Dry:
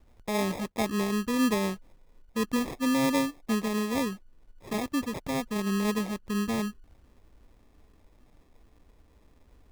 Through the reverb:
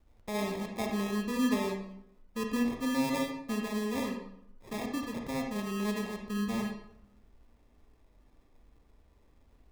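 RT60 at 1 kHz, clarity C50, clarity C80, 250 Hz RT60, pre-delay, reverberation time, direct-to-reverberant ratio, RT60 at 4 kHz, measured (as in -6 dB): 0.70 s, 4.0 dB, 7.5 dB, 0.85 s, 31 ms, 0.75 s, 2.0 dB, 0.50 s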